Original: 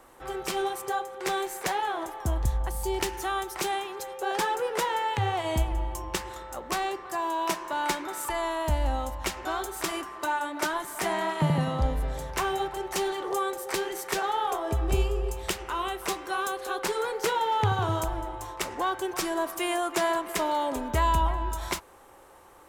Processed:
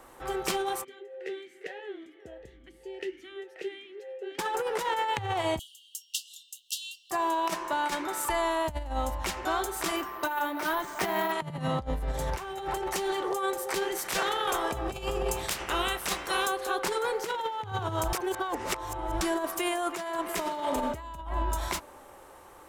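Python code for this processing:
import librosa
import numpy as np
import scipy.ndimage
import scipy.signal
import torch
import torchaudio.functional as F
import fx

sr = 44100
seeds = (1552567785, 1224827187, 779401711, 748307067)

y = fx.vowel_sweep(x, sr, vowels='e-i', hz=1.7, at=(0.83, 4.38), fade=0.02)
y = fx.brickwall_highpass(y, sr, low_hz=2700.0, at=(5.59, 7.11))
y = fx.resample_bad(y, sr, factor=3, down='filtered', up='hold', at=(9.96, 11.32))
y = fx.over_compress(y, sr, threshold_db=-37.0, ratio=-1.0, at=(12.11, 12.89), fade=0.02)
y = fx.spec_clip(y, sr, under_db=15, at=(13.97, 16.45), fade=0.02)
y = fx.reverb_throw(y, sr, start_s=20.26, length_s=0.49, rt60_s=2.7, drr_db=4.0)
y = fx.edit(y, sr, fx.reverse_span(start_s=18.13, length_s=1.08), tone=tone)
y = fx.over_compress(y, sr, threshold_db=-29.0, ratio=-0.5)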